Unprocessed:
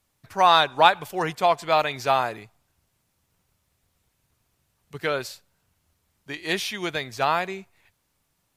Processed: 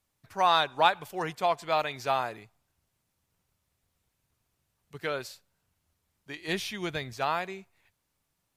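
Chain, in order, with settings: 6.48–7.13 s: bass shelf 180 Hz +11 dB; trim -6.5 dB

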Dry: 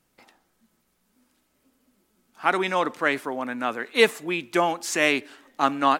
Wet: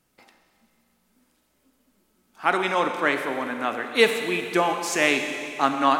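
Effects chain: Schroeder reverb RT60 2.5 s, combs from 30 ms, DRR 5.5 dB

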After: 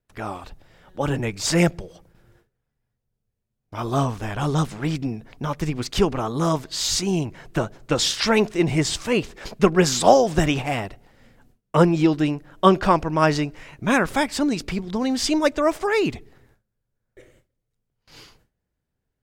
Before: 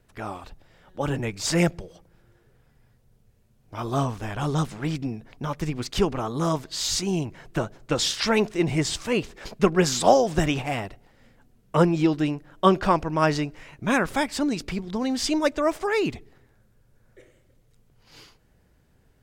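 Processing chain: gate with hold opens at -48 dBFS; trim +3 dB

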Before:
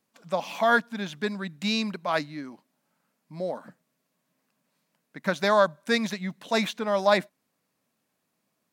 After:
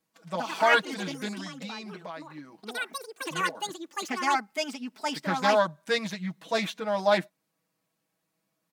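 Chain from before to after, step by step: comb 6.2 ms, depth 91%; 1.33–3.55 s: compression 10:1, threshold -32 dBFS, peak gain reduction 17 dB; ever faster or slower copies 155 ms, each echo +5 st, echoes 3; loudspeaker Doppler distortion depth 0.15 ms; trim -5 dB

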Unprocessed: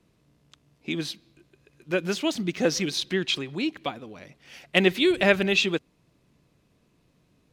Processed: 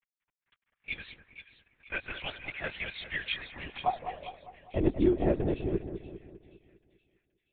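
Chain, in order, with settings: peaking EQ 770 Hz +8.5 dB 0.67 oct; bit crusher 9-bit; band-pass sweep 2.1 kHz -> 280 Hz, 3.27–4.62 s; LPC vocoder at 8 kHz whisper; on a send: two-band feedback delay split 2 kHz, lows 201 ms, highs 475 ms, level -9 dB; on the sum: tape noise reduction on one side only decoder only

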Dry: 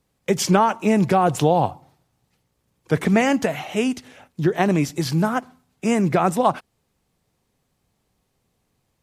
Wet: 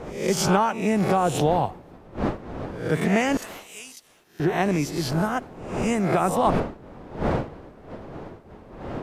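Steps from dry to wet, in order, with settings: reverse spectral sustain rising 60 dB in 0.56 s; wind noise 520 Hz -26 dBFS; 3.37–4.40 s: pre-emphasis filter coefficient 0.97; trim -5 dB

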